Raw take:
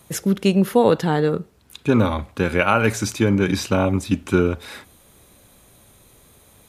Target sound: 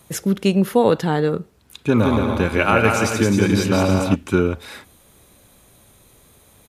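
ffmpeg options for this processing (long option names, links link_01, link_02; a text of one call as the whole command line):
ffmpeg -i in.wav -filter_complex "[0:a]asplit=3[link_01][link_02][link_03];[link_01]afade=type=out:start_time=1.94:duration=0.02[link_04];[link_02]aecho=1:1:170|280.5|352.3|399|429.4:0.631|0.398|0.251|0.158|0.1,afade=type=in:start_time=1.94:duration=0.02,afade=type=out:start_time=4.14:duration=0.02[link_05];[link_03]afade=type=in:start_time=4.14:duration=0.02[link_06];[link_04][link_05][link_06]amix=inputs=3:normalize=0" out.wav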